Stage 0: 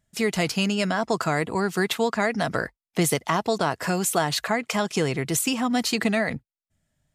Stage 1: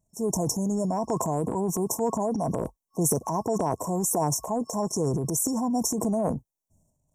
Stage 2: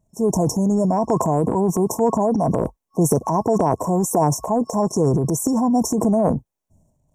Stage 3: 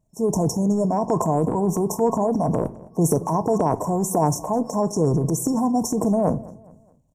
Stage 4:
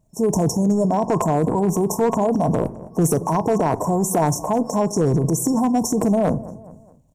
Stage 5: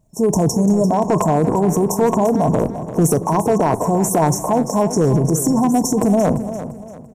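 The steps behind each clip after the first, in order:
FFT band-reject 1100–5400 Hz; transient shaper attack -3 dB, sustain +10 dB; gain -2 dB
high shelf 3300 Hz -9.5 dB; gain +8.5 dB
feedback echo 0.21 s, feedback 41%, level -21.5 dB; reverb RT60 0.50 s, pre-delay 7 ms, DRR 13 dB; gain -2.5 dB
in parallel at +0.5 dB: compressor 10:1, threshold -28 dBFS, peak gain reduction 14.5 dB; on the sum: hard clip -11 dBFS, distortion -20 dB
feedback echo 0.343 s, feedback 35%, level -12 dB; gain +3 dB

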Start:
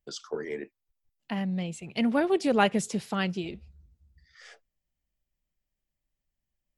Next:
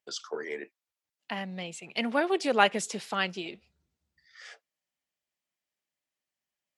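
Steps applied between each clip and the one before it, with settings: weighting filter A; gain +2 dB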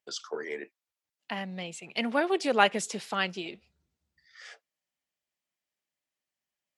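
nothing audible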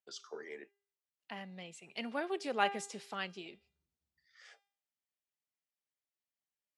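resonator 400 Hz, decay 0.49 s, mix 60%; gain -3 dB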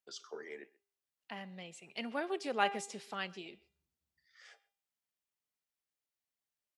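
speakerphone echo 0.13 s, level -22 dB

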